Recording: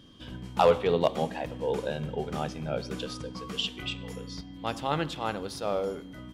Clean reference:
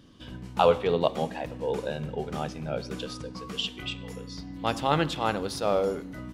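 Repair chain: clip repair -12 dBFS; band-stop 3.2 kHz, Q 30; gain correction +4.5 dB, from 4.41 s

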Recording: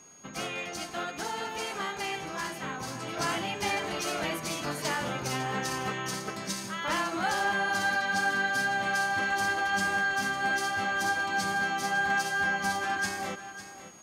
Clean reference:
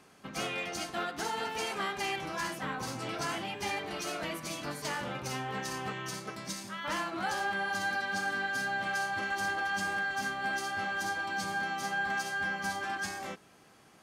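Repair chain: band-stop 6.6 kHz, Q 30; inverse comb 552 ms -12.5 dB; gain correction -4.5 dB, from 3.17 s

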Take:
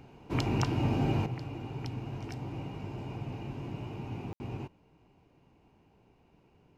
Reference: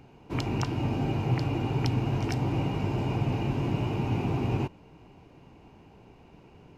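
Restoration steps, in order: room tone fill 4.33–4.40 s; gain correction +11 dB, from 1.26 s

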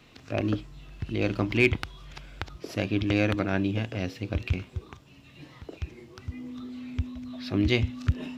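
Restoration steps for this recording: clip repair -10 dBFS; band-stop 250 Hz, Q 30

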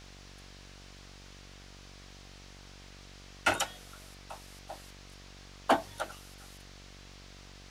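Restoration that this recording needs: clip repair -16.5 dBFS; de-hum 47.5 Hz, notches 16; noise print and reduce 30 dB

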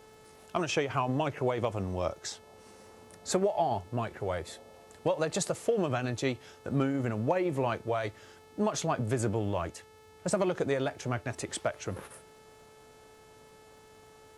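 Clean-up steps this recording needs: de-click; de-hum 435 Hz, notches 31

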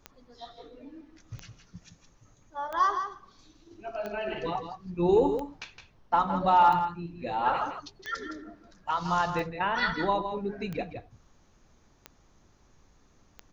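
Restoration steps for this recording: de-click; expander -53 dBFS, range -21 dB; inverse comb 164 ms -8.5 dB

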